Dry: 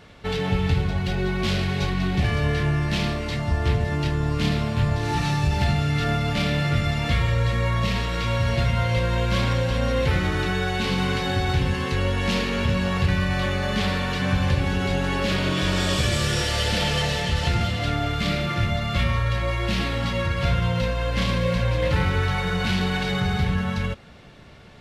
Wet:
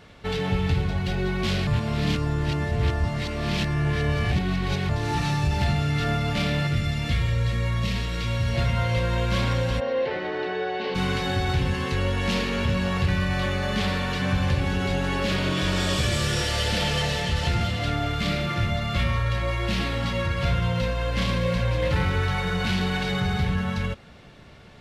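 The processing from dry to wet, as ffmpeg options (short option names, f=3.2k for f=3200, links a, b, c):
-filter_complex "[0:a]asettb=1/sr,asplit=3[a][b][c];[a]atrim=end=6.674[d];[b]atrim=start=6.67:end=8.55,asetpts=PTS-STARTPTS,afade=t=in:d=0.004:c=qsin,afade=t=out:st=1.876:d=0.004:c=qsin,equalizer=f=880:w=0.66:g=-7[e];[c]atrim=start=8.546[f];[d][e]acrossfade=d=0.004:c1=hsin:c2=qsin[g];[g][f]acrossfade=d=0.004:c1=qsin:c2=hsin,asplit=3[h][i][j];[h]afade=t=out:st=9.79:d=0.02[k];[i]highpass=380,equalizer=f=410:t=q:w=4:g=7,equalizer=f=620:t=q:w=4:g=6,equalizer=f=1.3k:t=q:w=4:g=-9,equalizer=f=2.4k:t=q:w=4:g=-6,equalizer=f=3.5k:t=q:w=4:g=-7,lowpass=f=3.9k:w=0.5412,lowpass=f=3.9k:w=1.3066,afade=t=in:st=9.79:d=0.02,afade=t=out:st=10.94:d=0.02[l];[j]afade=t=in:st=10.94:d=0.02[m];[k][l][m]amix=inputs=3:normalize=0,asplit=3[n][o][p];[n]atrim=end=1.672[q];[o]atrim=start=1.668:end=4.892,asetpts=PTS-STARTPTS,areverse[r];[p]atrim=start=4.888[s];[q][r]acrossfade=d=0.004:c1=hsin:c2=hsin[t];[t][s]acrossfade=d=0.004:c1=hsin:c2=hsin,acontrast=76,volume=-8dB"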